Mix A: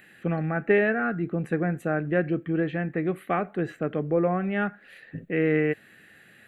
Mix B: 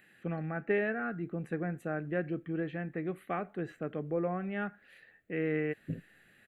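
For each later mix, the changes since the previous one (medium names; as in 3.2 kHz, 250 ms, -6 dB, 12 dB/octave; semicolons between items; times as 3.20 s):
first voice -9.0 dB; second voice: entry +0.75 s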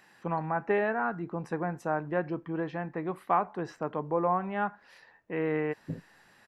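second voice: add low-pass 1.2 kHz; master: remove static phaser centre 2.3 kHz, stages 4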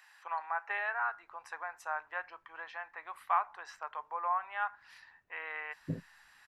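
first voice: add high-pass 920 Hz 24 dB/octave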